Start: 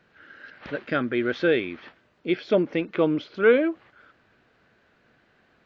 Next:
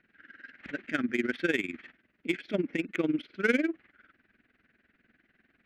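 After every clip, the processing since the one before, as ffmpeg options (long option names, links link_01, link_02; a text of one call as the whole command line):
ffmpeg -i in.wav -af "equalizer=frequency=125:width_type=o:width=1:gain=-9,equalizer=frequency=250:width_type=o:width=1:gain=6,equalizer=frequency=500:width_type=o:width=1:gain=-9,equalizer=frequency=1000:width_type=o:width=1:gain=-12,equalizer=frequency=2000:width_type=o:width=1:gain=8,equalizer=frequency=4000:width_type=o:width=1:gain=-3,tremolo=f=20:d=0.824,adynamicsmooth=sensitivity=5:basefreq=3400" out.wav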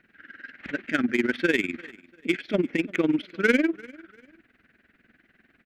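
ffmpeg -i in.wav -filter_complex "[0:a]asplit=2[link_01][link_02];[link_02]asoftclip=type=hard:threshold=-26dB,volume=-9dB[link_03];[link_01][link_03]amix=inputs=2:normalize=0,aecho=1:1:345|690:0.0708|0.0227,volume=3.5dB" out.wav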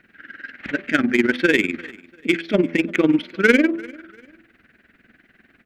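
ffmpeg -i in.wav -af "bandreject=frequency=83.43:width_type=h:width=4,bandreject=frequency=166.86:width_type=h:width=4,bandreject=frequency=250.29:width_type=h:width=4,bandreject=frequency=333.72:width_type=h:width=4,bandreject=frequency=417.15:width_type=h:width=4,bandreject=frequency=500.58:width_type=h:width=4,bandreject=frequency=584.01:width_type=h:width=4,bandreject=frequency=667.44:width_type=h:width=4,bandreject=frequency=750.87:width_type=h:width=4,bandreject=frequency=834.3:width_type=h:width=4,bandreject=frequency=917.73:width_type=h:width=4,bandreject=frequency=1001.16:width_type=h:width=4,bandreject=frequency=1084.59:width_type=h:width=4,bandreject=frequency=1168.02:width_type=h:width=4,bandreject=frequency=1251.45:width_type=h:width=4,volume=6.5dB" out.wav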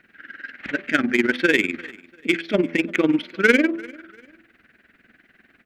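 ffmpeg -i in.wav -af "lowshelf=frequency=320:gain=-4.5" out.wav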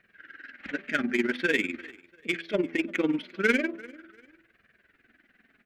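ffmpeg -i in.wav -af "flanger=delay=1.7:depth=3.4:regen=-36:speed=0.43:shape=sinusoidal,volume=-3.5dB" out.wav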